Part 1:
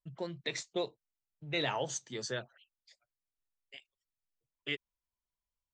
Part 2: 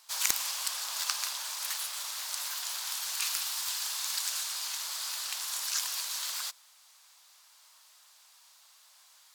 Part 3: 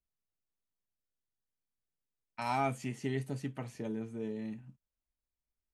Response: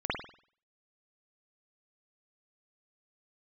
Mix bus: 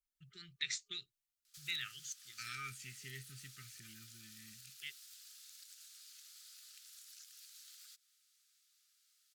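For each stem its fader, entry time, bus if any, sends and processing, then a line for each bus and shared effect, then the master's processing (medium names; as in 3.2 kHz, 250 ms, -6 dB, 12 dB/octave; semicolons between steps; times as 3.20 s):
+2.0 dB, 0.15 s, no send, auto duck -12 dB, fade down 0.90 s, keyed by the third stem
-13.5 dB, 1.45 s, no send, compression, threshold -40 dBFS, peak gain reduction 17.5 dB
-0.5 dB, 0.00 s, no send, none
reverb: none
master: FFT band-reject 410–1200 Hz; amplifier tone stack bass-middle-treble 10-0-10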